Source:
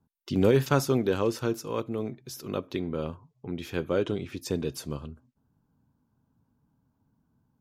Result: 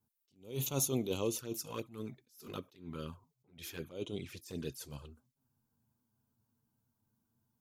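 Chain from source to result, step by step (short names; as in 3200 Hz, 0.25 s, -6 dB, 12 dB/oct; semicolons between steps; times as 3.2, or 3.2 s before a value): envelope flanger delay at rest 9.2 ms, full sweep at -24 dBFS; pre-emphasis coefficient 0.8; attack slew limiter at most 150 dB/s; gain +6.5 dB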